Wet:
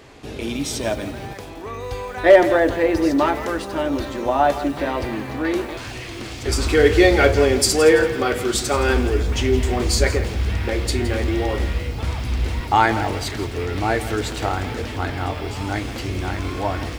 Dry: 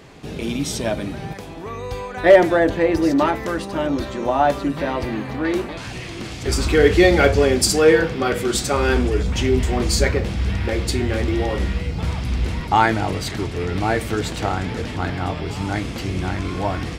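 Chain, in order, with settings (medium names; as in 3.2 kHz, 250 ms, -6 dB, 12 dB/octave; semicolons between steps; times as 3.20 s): peaking EQ 170 Hz -13 dB 0.39 oct; bit-crushed delay 167 ms, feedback 35%, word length 6-bit, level -13 dB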